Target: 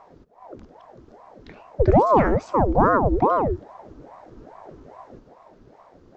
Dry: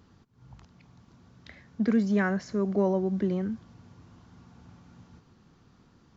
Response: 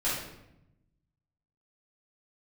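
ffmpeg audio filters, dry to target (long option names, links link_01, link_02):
-af "tiltshelf=frequency=1100:gain=5.5,aeval=exprs='val(0)*sin(2*PI*510*n/s+510*0.75/2.4*sin(2*PI*2.4*n/s))':channel_layout=same,volume=6.5dB"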